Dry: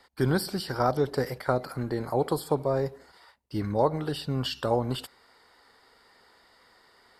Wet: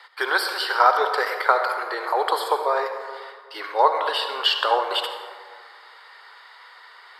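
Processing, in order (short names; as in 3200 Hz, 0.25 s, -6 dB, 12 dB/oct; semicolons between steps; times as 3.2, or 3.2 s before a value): steep high-pass 400 Hz 48 dB/oct; band shelf 1900 Hz +12.5 dB 2.6 oct; reverb RT60 1.8 s, pre-delay 52 ms, DRR 6 dB; gain +1.5 dB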